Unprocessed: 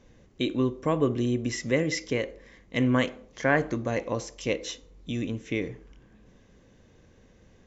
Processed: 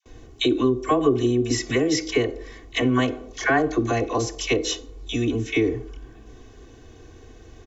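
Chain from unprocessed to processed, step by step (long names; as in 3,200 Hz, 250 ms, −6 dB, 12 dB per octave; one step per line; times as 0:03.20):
parametric band 2,000 Hz −3.5 dB 0.79 octaves
all-pass dispersion lows, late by 60 ms, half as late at 800 Hz
downward compressor 2.5 to 1, threshold −30 dBFS, peak gain reduction 8 dB
comb filter 2.7 ms, depth 89%
noise gate with hold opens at −53 dBFS
level +9 dB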